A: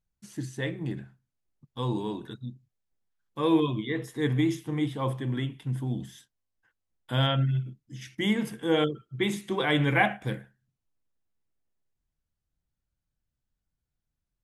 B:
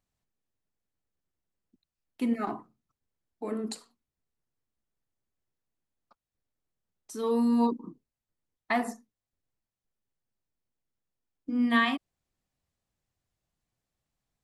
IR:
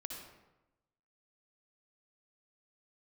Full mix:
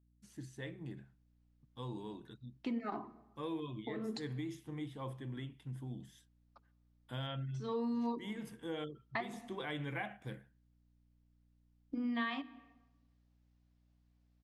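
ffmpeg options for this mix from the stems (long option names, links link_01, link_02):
-filter_complex "[0:a]aeval=exprs='val(0)+0.00141*(sin(2*PI*60*n/s)+sin(2*PI*2*60*n/s)/2+sin(2*PI*3*60*n/s)/3+sin(2*PI*4*60*n/s)/4+sin(2*PI*5*60*n/s)/5)':channel_layout=same,volume=-13dB,asplit=2[link_01][link_02];[1:a]lowpass=frequency=5600:width=0.5412,lowpass=frequency=5600:width=1.3066,bandreject=frequency=50:width_type=h:width=6,bandreject=frequency=100:width_type=h:width=6,bandreject=frequency=150:width_type=h:width=6,bandreject=frequency=200:width_type=h:width=6,bandreject=frequency=250:width_type=h:width=6,bandreject=frequency=300:width_type=h:width=6,bandreject=frequency=350:width_type=h:width=6,bandreject=frequency=400:width_type=h:width=6,bandreject=frequency=450:width_type=h:width=6,adelay=450,volume=-0.5dB,asplit=2[link_03][link_04];[link_04]volume=-18.5dB[link_05];[link_02]apad=whole_len=656398[link_06];[link_03][link_06]sidechaincompress=threshold=-50dB:ratio=8:attack=48:release=124[link_07];[2:a]atrim=start_sample=2205[link_08];[link_05][link_08]afir=irnorm=-1:irlink=0[link_09];[link_01][link_07][link_09]amix=inputs=3:normalize=0,acompressor=threshold=-38dB:ratio=3"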